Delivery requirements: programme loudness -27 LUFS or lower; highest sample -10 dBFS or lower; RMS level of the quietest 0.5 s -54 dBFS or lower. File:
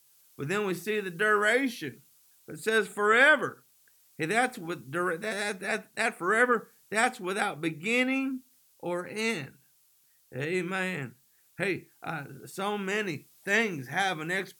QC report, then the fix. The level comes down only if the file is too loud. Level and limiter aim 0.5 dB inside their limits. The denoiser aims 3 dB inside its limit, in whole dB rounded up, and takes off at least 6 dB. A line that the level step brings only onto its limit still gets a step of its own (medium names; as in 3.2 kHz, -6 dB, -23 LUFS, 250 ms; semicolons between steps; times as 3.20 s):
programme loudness -28.5 LUFS: pass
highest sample -9.0 dBFS: fail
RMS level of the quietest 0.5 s -65 dBFS: pass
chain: peak limiter -10.5 dBFS